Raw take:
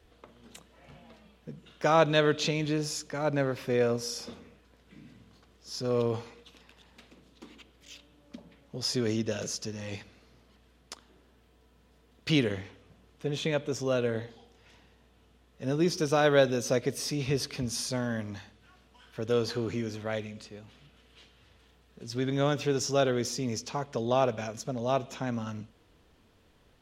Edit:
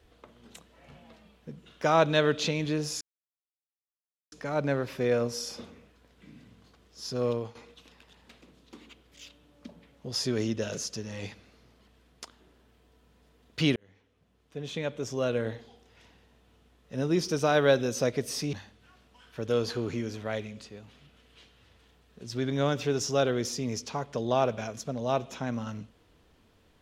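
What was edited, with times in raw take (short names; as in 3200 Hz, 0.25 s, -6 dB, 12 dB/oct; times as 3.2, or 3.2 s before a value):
3.01 insert silence 1.31 s
5.94–6.24 fade out, to -14 dB
12.45–14.07 fade in
17.22–18.33 cut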